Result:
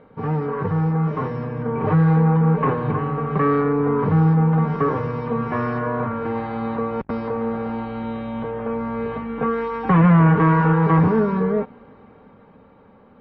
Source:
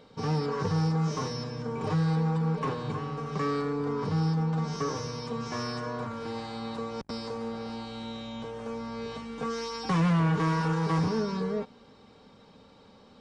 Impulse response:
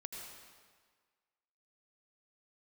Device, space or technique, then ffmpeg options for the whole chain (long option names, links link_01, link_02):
action camera in a waterproof case: -filter_complex "[0:a]asettb=1/sr,asplit=3[link_01][link_02][link_03];[link_01]atrim=end=8.894[link_04];[link_02]atrim=start=8.89:end=10.11,asetpts=PTS-STARTPTS,afade=type=in:duration=0.004:curve=qsin,afade=type=out:start_time=1.216:duration=0.004:curve=qsin,equalizer=frequency=5200:width_type=o:width=0.49:gain=-5.5[link_05];[link_03]atrim=start=10.106[link_06];[link_04][link_05]acrossfade=duration=0.004:curve1=hsin:curve2=qsin[link_07];[link_07][link_06]acrossfade=duration=0.004:curve1=qsin:curve2=hsin,lowpass=frequency=2100:width=0.5412,lowpass=frequency=2100:width=1.3066,dynaudnorm=framelen=170:gausssize=17:maxgain=5.5dB,volume=5.5dB" -ar 44100 -c:a aac -b:a 48k